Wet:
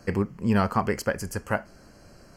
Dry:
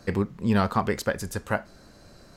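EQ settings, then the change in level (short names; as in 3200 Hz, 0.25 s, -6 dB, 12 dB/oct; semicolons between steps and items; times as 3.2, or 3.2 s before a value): Butterworth band-stop 3700 Hz, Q 3.2; 0.0 dB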